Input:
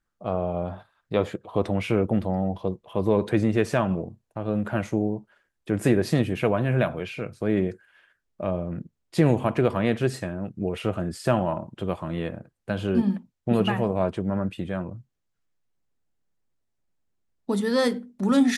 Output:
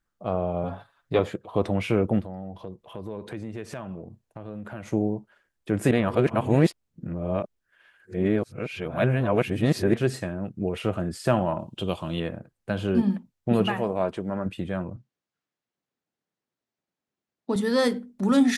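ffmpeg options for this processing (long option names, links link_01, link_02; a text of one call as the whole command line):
ffmpeg -i in.wav -filter_complex "[0:a]asettb=1/sr,asplit=3[link_01][link_02][link_03];[link_01]atrim=end=0.634[link_04];[link_02]atrim=start=0.63:end=1.19,asetpts=PTS-STARTPTS,afade=type=in:duration=0.004:curve=qsin,afade=type=out:start_time=0.556:duration=0.004:curve=qsin,aecho=1:1:7.2:0.78,atrim=end_sample=24696[link_05];[link_03]atrim=start=1.186[link_06];[link_04][link_05]acrossfade=duration=0.004:curve1=hsin:curve2=qsin[link_07];[link_07][link_06]acrossfade=duration=0.004:curve1=qsin:curve2=hsin,asplit=3[link_08][link_09][link_10];[link_08]afade=type=out:start_time=2.2:duration=0.02[link_11];[link_09]acompressor=threshold=-38dB:ratio=2.5:attack=3.2:release=140:knee=1:detection=peak,afade=type=in:start_time=2.2:duration=0.02,afade=type=out:start_time=4.86:duration=0.02[link_12];[link_10]afade=type=in:start_time=4.86:duration=0.02[link_13];[link_11][link_12][link_13]amix=inputs=3:normalize=0,asettb=1/sr,asplit=3[link_14][link_15][link_16];[link_14]atrim=end=11.594[link_17];[link_15]atrim=start=11.59:end=12.2,asetpts=PTS-STARTPTS,afade=type=in:duration=0.004:curve=qsin,afade=type=out:start_time=0.606:duration=0.004:curve=qsin,highshelf=frequency=2400:width_type=q:width=3:gain=6[link_18];[link_16]atrim=start=12.196[link_19];[link_17][link_18]acrossfade=duration=0.004:curve1=hsin:curve2=qsin[link_20];[link_20][link_19]acrossfade=duration=0.004:curve1=qsin:curve2=hsin,asettb=1/sr,asplit=3[link_21][link_22][link_23];[link_21]atrim=end=13.674[link_24];[link_22]atrim=start=13.67:end=14.46,asetpts=PTS-STARTPTS,afade=type=in:duration=0.004:curve=qsin,afade=type=out:start_time=0.786:duration=0.004:curve=qsin,equalizer=frequency=82:width=0.51:gain=-9[link_25];[link_23]atrim=start=14.456[link_26];[link_24][link_25]acrossfade=duration=0.004:curve1=hsin:curve2=qsin[link_27];[link_27][link_26]acrossfade=duration=0.004:curve1=qsin:curve2=hsin,asettb=1/sr,asplit=3[link_28][link_29][link_30];[link_28]atrim=end=14.964[link_31];[link_29]atrim=start=14.96:end=17.56,asetpts=PTS-STARTPTS,afade=type=in:duration=0.004:curve=qsin,afade=type=out:start_time=2.596:duration=0.004:curve=qsin,highpass=180,lowpass=5900[link_32];[link_30]atrim=start=17.556[link_33];[link_31][link_32]acrossfade=duration=0.004:curve1=hsin:curve2=qsin[link_34];[link_34][link_33]acrossfade=duration=0.004:curve1=qsin:curve2=hsin,asplit=3[link_35][link_36][link_37];[link_35]atrim=end=5.912[link_38];[link_36]atrim=start=5.908:end=9.942,asetpts=PTS-STARTPTS,areverse[link_39];[link_37]atrim=start=9.938[link_40];[link_38][link_39]acrossfade=duration=0.004:curve1=hsin:curve2=hsin[link_41];[link_41][link_40]acrossfade=duration=0.004:curve1=hsin:curve2=hsin" out.wav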